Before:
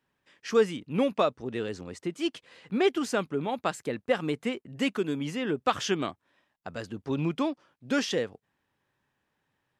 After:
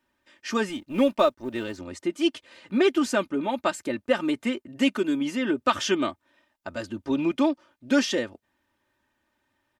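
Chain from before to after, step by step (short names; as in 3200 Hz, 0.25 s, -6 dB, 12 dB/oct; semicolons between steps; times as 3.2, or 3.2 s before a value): 0.69–1.78 G.711 law mismatch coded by A; comb 3.3 ms, depth 76%; gain +2 dB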